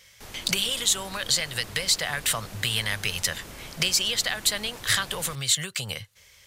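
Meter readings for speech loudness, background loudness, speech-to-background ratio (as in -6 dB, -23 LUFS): -25.0 LUFS, -42.5 LUFS, 17.5 dB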